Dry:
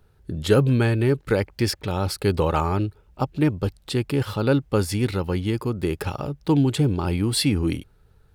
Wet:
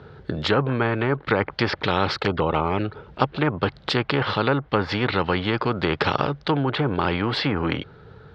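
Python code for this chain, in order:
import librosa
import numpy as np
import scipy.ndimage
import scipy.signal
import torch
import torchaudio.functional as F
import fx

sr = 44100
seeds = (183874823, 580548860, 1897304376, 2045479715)

p1 = fx.env_lowpass_down(x, sr, base_hz=1400.0, full_db=-16.0)
p2 = fx.dynamic_eq(p1, sr, hz=1100.0, q=1.4, threshold_db=-39.0, ratio=4.0, max_db=5)
p3 = fx.rider(p2, sr, range_db=5, speed_s=0.5)
p4 = p2 + (p3 * 10.0 ** (1.0 / 20.0))
p5 = fx.cabinet(p4, sr, low_hz=120.0, low_slope=12, high_hz=3900.0, hz=(140.0, 460.0, 1400.0, 2600.0), db=(4, 4, 3, -6))
p6 = fx.env_flanger(p5, sr, rest_ms=7.0, full_db=-9.5, at=(2.17, 2.84), fade=0.02)
p7 = fx.spectral_comp(p6, sr, ratio=2.0)
y = p7 * 10.0 ** (-5.0 / 20.0)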